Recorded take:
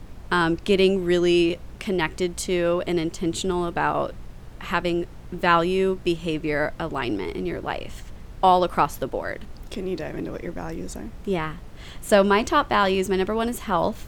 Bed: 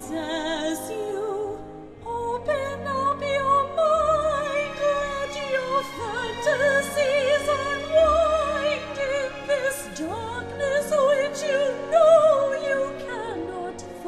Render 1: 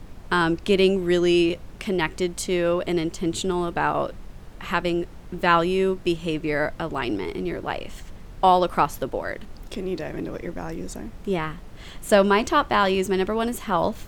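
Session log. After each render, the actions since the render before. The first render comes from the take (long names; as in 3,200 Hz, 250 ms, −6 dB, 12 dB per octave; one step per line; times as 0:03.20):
hum removal 60 Hz, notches 2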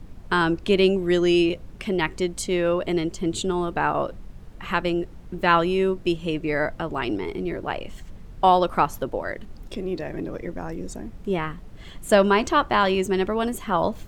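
broadband denoise 6 dB, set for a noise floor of −42 dBFS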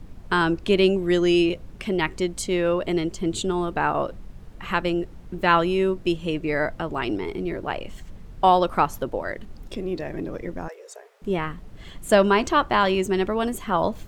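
0:10.68–0:11.22: Chebyshev high-pass with heavy ripple 410 Hz, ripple 3 dB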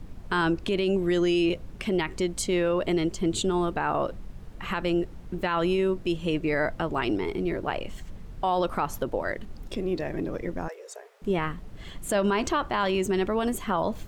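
brickwall limiter −16.5 dBFS, peak gain reduction 11.5 dB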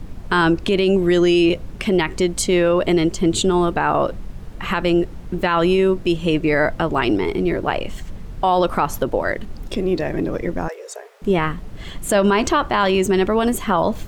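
level +8.5 dB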